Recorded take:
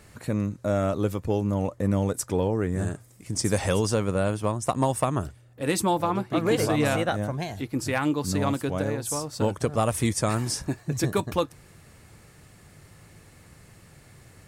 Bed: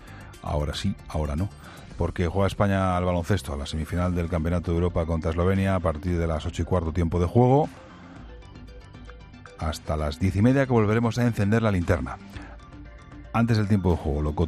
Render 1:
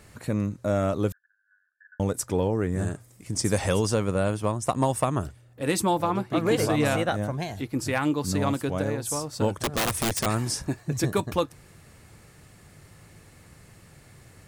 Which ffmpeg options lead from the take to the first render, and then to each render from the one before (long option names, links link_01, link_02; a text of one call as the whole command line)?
ffmpeg -i in.wav -filter_complex "[0:a]asettb=1/sr,asplit=3[link_01][link_02][link_03];[link_01]atrim=end=1.124[link_04];[link_02]atrim=start=1.12:end=2,asetpts=PTS-STARTPTS,afade=type=in:duration=0.004:curve=qsin,afade=type=out:start_time=0.876:duration=0.004:curve=qsin,asuperpass=centerf=1600:order=8:qfactor=6.5[link_05];[link_03]atrim=start=1.996[link_06];[link_04][link_05]acrossfade=duration=0.004:curve1=hsin:curve2=qsin[link_07];[link_07][link_06]acrossfade=duration=0.004:curve1=qsin:curve2=hsin,asettb=1/sr,asplit=3[link_08][link_09][link_10];[link_08]atrim=end=9.614[link_11];[link_09]atrim=start=9.61:end=10.26,asetpts=PTS-STARTPTS,afade=type=in:duration=0.004:curve=qsin,afade=type=out:start_time=0.646:duration=0.004:curve=qsin,aeval=exprs='(mod(9.44*val(0)+1,2)-1)/9.44':channel_layout=same[link_12];[link_10]atrim=start=10.256[link_13];[link_11][link_12]acrossfade=duration=0.004:curve1=hsin:curve2=qsin[link_14];[link_14][link_13]acrossfade=duration=0.004:curve1=qsin:curve2=hsin" out.wav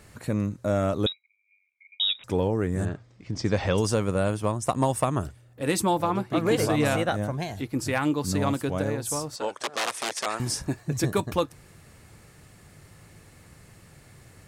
ffmpeg -i in.wav -filter_complex "[0:a]asettb=1/sr,asplit=3[link_01][link_02][link_03];[link_01]atrim=end=1.064[link_04];[link_02]atrim=start=1.06:end=2.24,asetpts=PTS-STARTPTS,afade=type=in:duration=0.004:curve=qsin,afade=type=out:start_time=1.176:duration=0.004:curve=qsin,lowpass=frequency=3300:width_type=q:width=0.5098,lowpass=frequency=3300:width_type=q:width=0.6013,lowpass=frequency=3300:width_type=q:width=0.9,lowpass=frequency=3300:width_type=q:width=2.563,afreqshift=-3900[link_05];[link_03]atrim=start=2.236[link_06];[link_04][link_05]acrossfade=duration=0.004:curve1=hsin:curve2=qsin[link_07];[link_07][link_06]acrossfade=duration=0.004:curve1=qsin:curve2=hsin,asettb=1/sr,asplit=3[link_08][link_09][link_10];[link_08]atrim=end=2.854[link_11];[link_09]atrim=start=2.85:end=3.78,asetpts=PTS-STARTPTS,afade=type=in:duration=0.004:curve=qsin,afade=type=out:start_time=0.926:duration=0.004:curve=qsin,lowpass=frequency=4800:width=0.5412,lowpass=frequency=4800:width=1.3066[link_12];[link_10]atrim=start=3.776[link_13];[link_11][link_12]acrossfade=duration=0.004:curve1=hsin:curve2=qsin[link_14];[link_14][link_13]acrossfade=duration=0.004:curve1=qsin:curve2=hsin,asettb=1/sr,asplit=3[link_15][link_16][link_17];[link_15]atrim=end=9.364[link_18];[link_16]atrim=start=9.36:end=10.4,asetpts=PTS-STARTPTS,afade=type=in:duration=0.004:curve=qsin,afade=type=out:start_time=1.036:duration=0.004:curve=qsin,highpass=540,lowpass=7300[link_19];[link_17]atrim=start=10.396[link_20];[link_18][link_19]acrossfade=duration=0.004:curve1=hsin:curve2=qsin[link_21];[link_21][link_20]acrossfade=duration=0.004:curve1=qsin:curve2=hsin" out.wav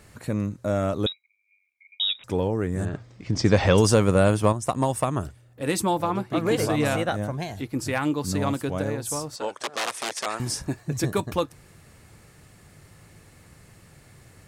ffmpeg -i in.wav -filter_complex "[0:a]asettb=1/sr,asplit=3[link_01][link_02][link_03];[link_01]atrim=end=2.934[link_04];[link_02]atrim=start=2.93:end=4.53,asetpts=PTS-STARTPTS,afade=type=in:duration=0.004:curve=qsin,afade=type=out:start_time=1.596:duration=0.004:curve=qsin,acontrast=63[link_05];[link_03]atrim=start=4.526[link_06];[link_04][link_05]acrossfade=duration=0.004:curve1=hsin:curve2=qsin[link_07];[link_07][link_06]acrossfade=duration=0.004:curve1=qsin:curve2=hsin" out.wav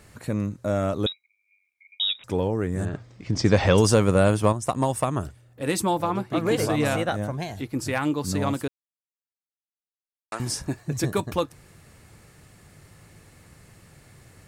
ffmpeg -i in.wav -filter_complex "[0:a]asplit=3[link_01][link_02][link_03];[link_01]atrim=end=8.68,asetpts=PTS-STARTPTS,afade=type=out:start_time=8.676:duration=0.004:curve=hsin[link_04];[link_02]atrim=start=8.68:end=10.32,asetpts=PTS-STARTPTS,volume=0[link_05];[link_03]atrim=start=10.32,asetpts=PTS-STARTPTS,afade=type=in:duration=0.004:curve=hsin[link_06];[link_04][link_05][link_06]concat=n=3:v=0:a=1" out.wav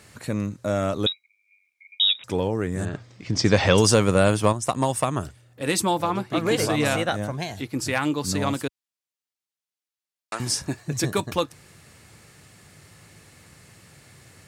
ffmpeg -i in.wav -af "highpass=74,equalizer=frequency=4500:width=0.39:gain=5.5" out.wav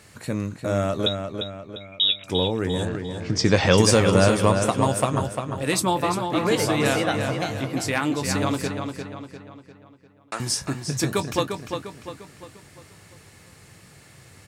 ffmpeg -i in.wav -filter_complex "[0:a]asplit=2[link_01][link_02];[link_02]adelay=22,volume=-12.5dB[link_03];[link_01][link_03]amix=inputs=2:normalize=0,asplit=2[link_04][link_05];[link_05]adelay=349,lowpass=frequency=5000:poles=1,volume=-6dB,asplit=2[link_06][link_07];[link_07]adelay=349,lowpass=frequency=5000:poles=1,volume=0.46,asplit=2[link_08][link_09];[link_09]adelay=349,lowpass=frequency=5000:poles=1,volume=0.46,asplit=2[link_10][link_11];[link_11]adelay=349,lowpass=frequency=5000:poles=1,volume=0.46,asplit=2[link_12][link_13];[link_13]adelay=349,lowpass=frequency=5000:poles=1,volume=0.46,asplit=2[link_14][link_15];[link_15]adelay=349,lowpass=frequency=5000:poles=1,volume=0.46[link_16];[link_04][link_06][link_08][link_10][link_12][link_14][link_16]amix=inputs=7:normalize=0" out.wav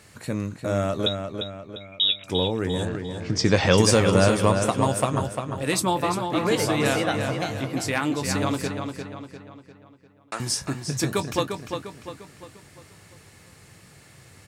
ffmpeg -i in.wav -af "volume=-1dB" out.wav